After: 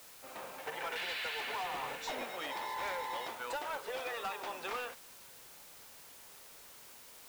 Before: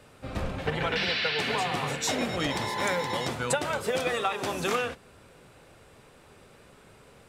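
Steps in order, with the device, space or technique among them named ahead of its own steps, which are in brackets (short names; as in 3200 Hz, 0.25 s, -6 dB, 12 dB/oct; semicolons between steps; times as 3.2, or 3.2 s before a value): drive-through speaker (BPF 530–3800 Hz; bell 910 Hz +6 dB 0.25 oct; hard clip -25 dBFS, distortion -14 dB; white noise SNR 13 dB); 1.63–2.24 low shelf 240 Hz +8 dB; gain -8.5 dB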